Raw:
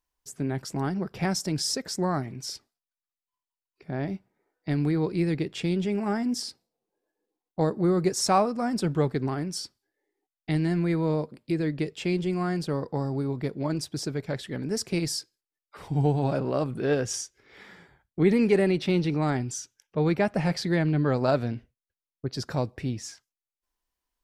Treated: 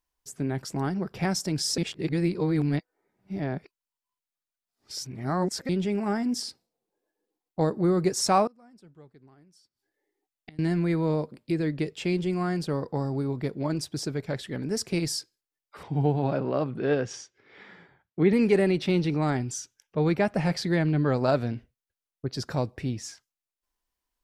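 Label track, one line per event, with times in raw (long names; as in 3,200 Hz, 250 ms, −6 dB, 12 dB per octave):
1.780000	5.690000	reverse
8.470000	10.590000	gate with flip shuts at −29 dBFS, range −27 dB
15.830000	18.330000	band-pass filter 110–3,800 Hz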